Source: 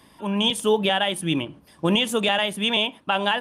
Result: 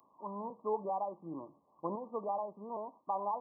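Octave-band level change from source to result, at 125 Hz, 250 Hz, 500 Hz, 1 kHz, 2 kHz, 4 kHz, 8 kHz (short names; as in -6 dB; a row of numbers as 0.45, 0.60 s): -22.5 dB, -20.5 dB, -14.0 dB, -9.5 dB, under -40 dB, under -40 dB, under -40 dB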